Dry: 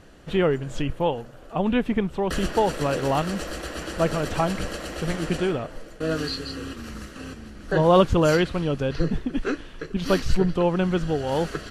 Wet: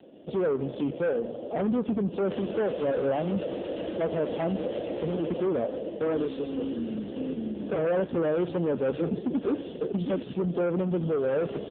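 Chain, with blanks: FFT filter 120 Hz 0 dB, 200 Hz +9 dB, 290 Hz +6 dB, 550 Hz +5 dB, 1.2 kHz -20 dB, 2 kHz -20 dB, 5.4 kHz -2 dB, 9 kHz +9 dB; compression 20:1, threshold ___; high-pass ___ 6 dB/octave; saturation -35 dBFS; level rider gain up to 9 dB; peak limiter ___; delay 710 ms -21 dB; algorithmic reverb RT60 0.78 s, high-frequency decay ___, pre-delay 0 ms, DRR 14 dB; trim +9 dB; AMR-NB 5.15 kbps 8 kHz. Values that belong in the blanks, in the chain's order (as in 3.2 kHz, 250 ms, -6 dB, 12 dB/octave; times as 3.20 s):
-18 dBFS, 1.1 kHz, -31.5 dBFS, 0.9×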